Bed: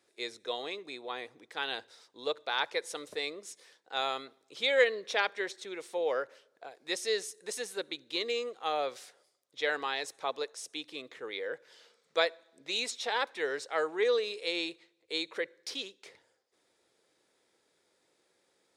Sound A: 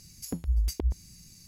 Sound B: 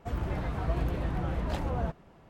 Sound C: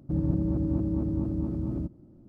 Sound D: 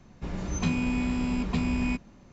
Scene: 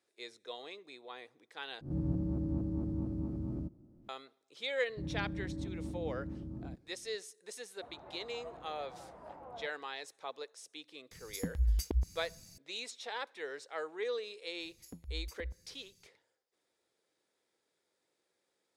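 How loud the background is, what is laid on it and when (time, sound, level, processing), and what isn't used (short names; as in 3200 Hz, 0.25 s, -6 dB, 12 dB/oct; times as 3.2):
bed -9 dB
1.81 replace with C -8.5 dB + spectral swells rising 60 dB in 0.34 s
4.88 add C -13 dB
7.76 add B -10 dB + band-pass 770 Hz, Q 1.5
11.11 add A -3.5 dB
14.6 add A -15.5 dB
not used: D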